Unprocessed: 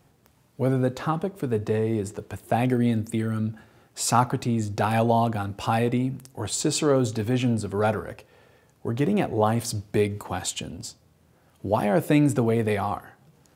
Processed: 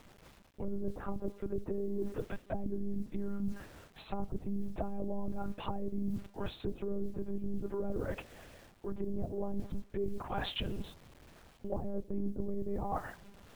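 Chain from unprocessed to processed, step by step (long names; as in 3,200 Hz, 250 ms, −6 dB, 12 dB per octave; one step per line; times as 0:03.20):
one-pitch LPC vocoder at 8 kHz 200 Hz
treble cut that deepens with the level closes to 400 Hz, closed at −20 dBFS
bit reduction 10 bits
reversed playback
downward compressor 6 to 1, threshold −34 dBFS, peak gain reduction 17.5 dB
reversed playback
level +2 dB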